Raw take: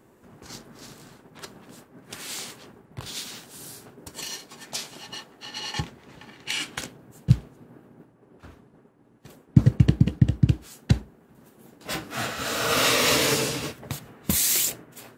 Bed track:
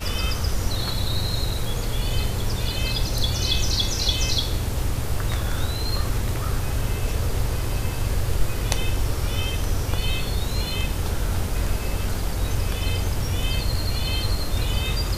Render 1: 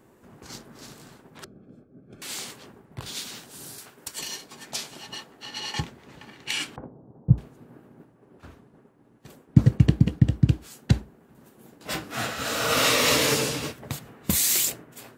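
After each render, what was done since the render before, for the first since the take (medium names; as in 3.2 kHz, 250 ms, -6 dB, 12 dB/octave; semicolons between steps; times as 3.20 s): 1.44–2.22 s: boxcar filter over 46 samples; 3.78–4.19 s: tilt shelf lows -8.5 dB, about 930 Hz; 6.76–7.38 s: inverse Chebyshev low-pass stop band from 5.3 kHz, stop band 80 dB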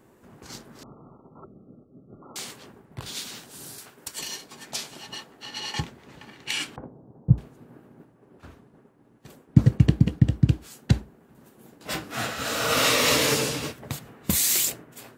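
0.83–2.36 s: brick-wall FIR low-pass 1.4 kHz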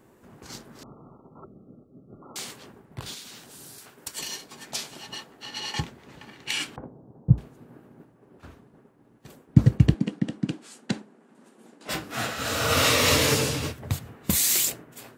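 3.14–3.93 s: compression 2:1, threshold -44 dBFS; 9.94–11.89 s: Chebyshev band-pass 210–9300 Hz, order 3; 12.44–14.16 s: peaking EQ 89 Hz +13.5 dB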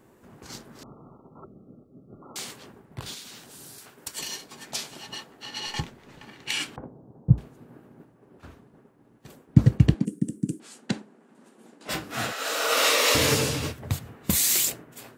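5.67–6.23 s: partial rectifier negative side -3 dB; 10.05–10.60 s: FFT filter 410 Hz 0 dB, 750 Hz -26 dB, 1.5 kHz -18 dB, 4.1 kHz -16 dB, 9 kHz +15 dB; 12.32–13.15 s: high-pass 360 Hz 24 dB/octave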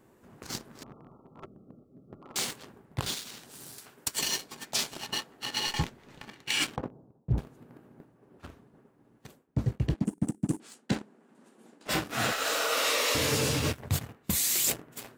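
waveshaping leveller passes 2; reverse; compression 8:1, threshold -25 dBFS, peak gain reduction 19 dB; reverse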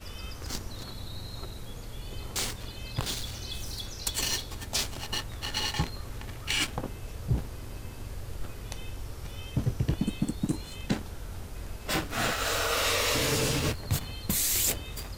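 add bed track -15.5 dB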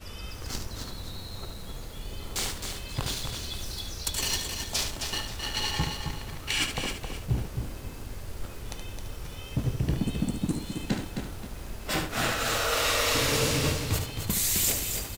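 on a send: delay 73 ms -7.5 dB; on the sum: bit-crushed delay 265 ms, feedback 35%, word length 8-bit, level -6 dB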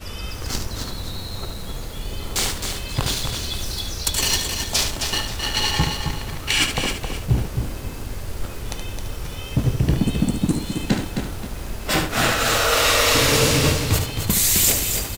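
trim +8.5 dB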